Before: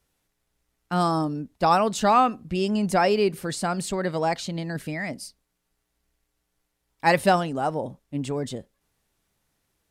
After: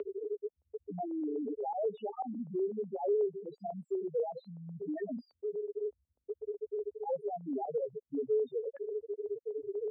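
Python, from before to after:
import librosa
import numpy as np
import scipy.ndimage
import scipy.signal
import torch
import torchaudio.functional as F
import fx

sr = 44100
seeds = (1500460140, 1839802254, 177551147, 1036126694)

y = np.sign(x) * np.sqrt(np.mean(np.square(x)))
y = fx.peak_eq(y, sr, hz=420.0, db=12.0, octaves=0.33)
y = fx.spec_topn(y, sr, count=1)
y = fx.filter_lfo_notch(y, sr, shape='saw_up', hz=8.1, low_hz=760.0, high_hz=1900.0, q=1.4)
y = fx.cabinet(y, sr, low_hz=270.0, low_slope=24, high_hz=2700.0, hz=(330.0, 520.0, 1100.0, 1700.0), db=(-6, 4, -3, -8))
y = fx.band_squash(y, sr, depth_pct=70)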